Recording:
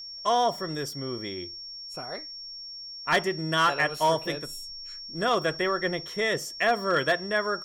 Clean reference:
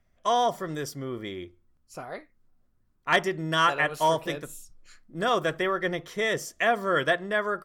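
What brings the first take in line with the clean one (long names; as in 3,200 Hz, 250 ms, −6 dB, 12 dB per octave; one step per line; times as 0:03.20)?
clipped peaks rebuilt −15.5 dBFS
notch filter 5,500 Hz, Q 30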